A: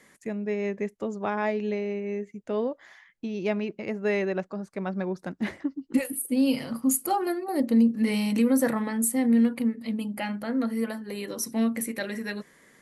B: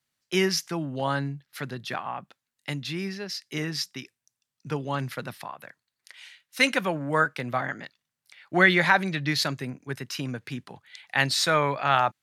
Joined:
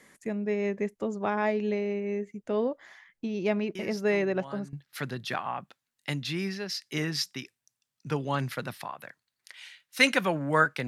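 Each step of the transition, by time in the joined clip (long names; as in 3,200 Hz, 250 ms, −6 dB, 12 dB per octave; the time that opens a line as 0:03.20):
A
0:03.75: mix in B from 0:00.35 0.98 s −17 dB
0:04.73: continue with B from 0:01.33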